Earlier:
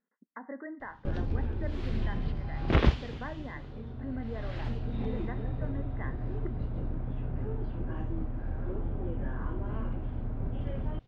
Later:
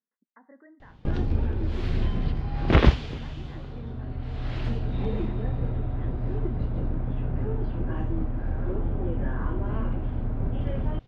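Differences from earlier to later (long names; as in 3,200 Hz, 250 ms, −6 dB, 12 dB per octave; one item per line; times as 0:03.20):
speech −11.5 dB
background +6.0 dB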